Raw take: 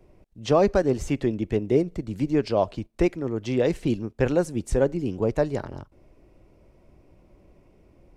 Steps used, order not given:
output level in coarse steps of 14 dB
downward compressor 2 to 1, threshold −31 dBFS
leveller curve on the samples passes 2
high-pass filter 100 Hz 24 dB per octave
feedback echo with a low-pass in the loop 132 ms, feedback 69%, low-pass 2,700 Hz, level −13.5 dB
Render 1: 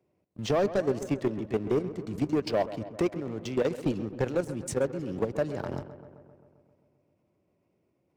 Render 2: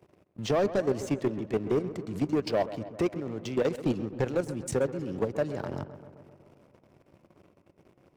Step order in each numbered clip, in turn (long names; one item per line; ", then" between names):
downward compressor, then high-pass filter, then output level in coarse steps, then leveller curve on the samples, then feedback echo with a low-pass in the loop
downward compressor, then output level in coarse steps, then high-pass filter, then leveller curve on the samples, then feedback echo with a low-pass in the loop